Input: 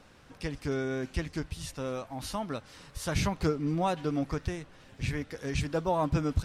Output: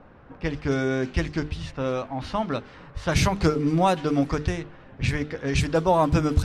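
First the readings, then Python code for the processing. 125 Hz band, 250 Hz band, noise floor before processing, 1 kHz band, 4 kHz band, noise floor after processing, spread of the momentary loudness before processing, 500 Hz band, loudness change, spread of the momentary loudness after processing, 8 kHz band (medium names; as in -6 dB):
+7.5 dB, +7.5 dB, -56 dBFS, +8.5 dB, +7.0 dB, -49 dBFS, 10 LU, +8.0 dB, +7.5 dB, 11 LU, +5.5 dB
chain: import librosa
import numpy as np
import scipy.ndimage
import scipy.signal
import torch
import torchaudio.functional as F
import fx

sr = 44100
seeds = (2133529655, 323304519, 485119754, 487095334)

y = fx.env_lowpass(x, sr, base_hz=1200.0, full_db=-25.0)
y = fx.hum_notches(y, sr, base_hz=50, count=9)
y = y * 10.0 ** (8.5 / 20.0)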